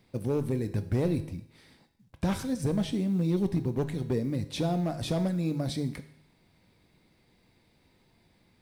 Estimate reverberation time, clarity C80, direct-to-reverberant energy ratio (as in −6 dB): 0.70 s, 16.0 dB, 9.0 dB